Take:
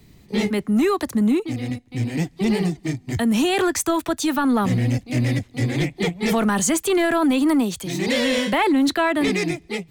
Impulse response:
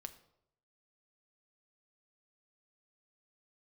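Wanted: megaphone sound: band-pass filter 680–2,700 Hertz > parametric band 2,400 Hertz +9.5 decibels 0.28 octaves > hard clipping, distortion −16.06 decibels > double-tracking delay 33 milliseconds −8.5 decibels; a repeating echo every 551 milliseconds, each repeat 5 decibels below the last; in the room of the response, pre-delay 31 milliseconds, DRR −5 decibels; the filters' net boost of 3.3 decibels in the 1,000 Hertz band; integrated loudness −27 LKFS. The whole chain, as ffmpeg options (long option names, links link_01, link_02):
-filter_complex "[0:a]equalizer=frequency=1000:width_type=o:gain=5.5,aecho=1:1:551|1102|1653|2204|2755|3306|3857:0.562|0.315|0.176|0.0988|0.0553|0.031|0.0173,asplit=2[link_01][link_02];[1:a]atrim=start_sample=2205,adelay=31[link_03];[link_02][link_03]afir=irnorm=-1:irlink=0,volume=10dB[link_04];[link_01][link_04]amix=inputs=2:normalize=0,highpass=680,lowpass=2700,equalizer=frequency=2400:width_type=o:width=0.28:gain=9.5,asoftclip=type=hard:threshold=-9.5dB,asplit=2[link_05][link_06];[link_06]adelay=33,volume=-8.5dB[link_07];[link_05][link_07]amix=inputs=2:normalize=0,volume=-10dB"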